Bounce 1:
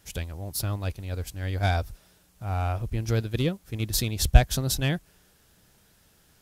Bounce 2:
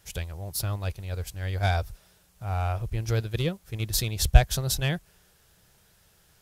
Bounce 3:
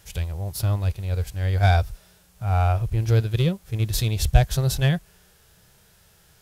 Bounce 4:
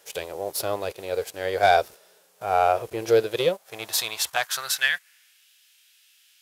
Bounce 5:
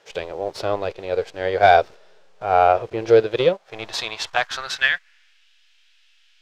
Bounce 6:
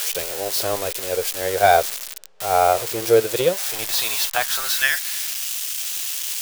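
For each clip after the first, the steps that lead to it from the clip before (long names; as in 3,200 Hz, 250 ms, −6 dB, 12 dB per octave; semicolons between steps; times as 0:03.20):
parametric band 260 Hz −12.5 dB 0.44 octaves
harmonic and percussive parts rebalanced percussive −10 dB; level +8 dB
leveller curve on the samples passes 1; high-pass filter sweep 460 Hz → 2,700 Hz, 0:03.24–0:05.48
in parallel at −12 dB: slack as between gear wheels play −18.5 dBFS; on the sum: high-frequency loss of the air 160 metres; level +4 dB
spike at every zero crossing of −13 dBFS; level −1.5 dB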